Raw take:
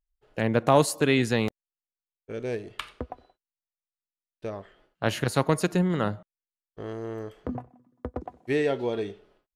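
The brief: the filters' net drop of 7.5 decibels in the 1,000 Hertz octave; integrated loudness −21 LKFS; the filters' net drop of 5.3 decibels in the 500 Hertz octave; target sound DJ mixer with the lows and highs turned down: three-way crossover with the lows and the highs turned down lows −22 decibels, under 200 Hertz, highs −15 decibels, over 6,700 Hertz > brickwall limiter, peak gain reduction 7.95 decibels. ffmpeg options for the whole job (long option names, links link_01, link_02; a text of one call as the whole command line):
ffmpeg -i in.wav -filter_complex "[0:a]acrossover=split=200 6700:gain=0.0794 1 0.178[link_01][link_02][link_03];[link_01][link_02][link_03]amix=inputs=3:normalize=0,equalizer=frequency=500:width_type=o:gain=-4,equalizer=frequency=1000:width_type=o:gain=-8.5,volume=15dB,alimiter=limit=-6.5dB:level=0:latency=1" out.wav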